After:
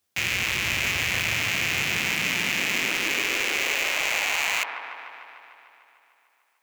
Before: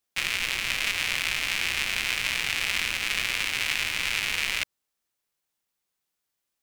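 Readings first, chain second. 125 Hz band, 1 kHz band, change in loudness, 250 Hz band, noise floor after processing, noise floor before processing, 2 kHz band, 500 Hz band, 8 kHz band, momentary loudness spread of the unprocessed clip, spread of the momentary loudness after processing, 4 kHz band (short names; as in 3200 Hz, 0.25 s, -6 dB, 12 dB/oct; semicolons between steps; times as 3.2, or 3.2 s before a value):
+8.5 dB, +5.5 dB, +2.5 dB, +9.5 dB, -68 dBFS, -82 dBFS, +3.0 dB, +9.5 dB, +3.0 dB, 1 LU, 4 LU, +0.5 dB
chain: high-pass sweep 82 Hz -> 1100 Hz, 1.16–4.8; dark delay 0.149 s, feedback 71%, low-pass 1100 Hz, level -5 dB; overloaded stage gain 22.5 dB; gain +6 dB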